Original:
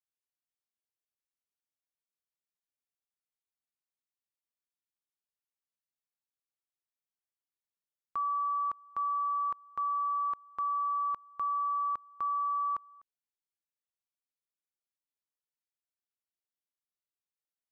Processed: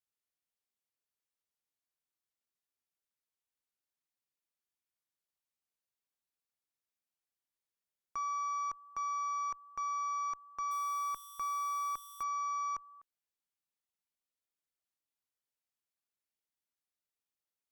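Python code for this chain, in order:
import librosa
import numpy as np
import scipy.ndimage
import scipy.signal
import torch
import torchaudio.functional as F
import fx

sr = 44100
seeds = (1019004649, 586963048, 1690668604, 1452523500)

y = fx.crossing_spikes(x, sr, level_db=-40.0, at=(10.71, 12.23))
y = fx.cheby_harmonics(y, sr, harmonics=(2, 4, 5, 6), levels_db=(-21, -33, -18, -41), full_scale_db=-28.0)
y = F.gain(torch.from_numpy(y), -4.5).numpy()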